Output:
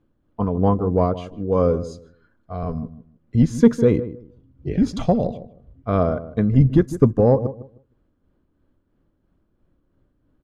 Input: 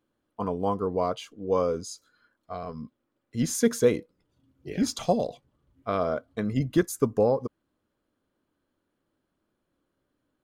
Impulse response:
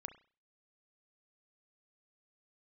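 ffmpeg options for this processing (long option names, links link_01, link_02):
-filter_complex "[0:a]aemphasis=mode=reproduction:type=riaa,tremolo=f=3:d=0.43,acontrast=30,asplit=2[link_01][link_02];[link_02]adelay=155,lowpass=frequency=970:poles=1,volume=-13dB,asplit=2[link_03][link_04];[link_04]adelay=155,lowpass=frequency=970:poles=1,volume=0.22,asplit=2[link_05][link_06];[link_06]adelay=155,lowpass=frequency=970:poles=1,volume=0.22[link_07];[link_03][link_05][link_07]amix=inputs=3:normalize=0[link_08];[link_01][link_08]amix=inputs=2:normalize=0"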